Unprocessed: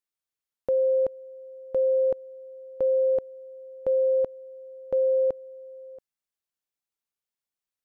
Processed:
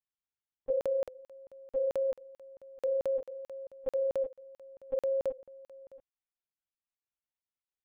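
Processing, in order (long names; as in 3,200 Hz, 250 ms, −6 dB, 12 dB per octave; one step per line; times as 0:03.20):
one-pitch LPC vocoder at 8 kHz 270 Hz
0:03.22–0:03.67: flat-topped bell 570 Hz +8.5 dB
regular buffer underruns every 0.22 s, samples 2,048, zero, from 0:00.81
level −7.5 dB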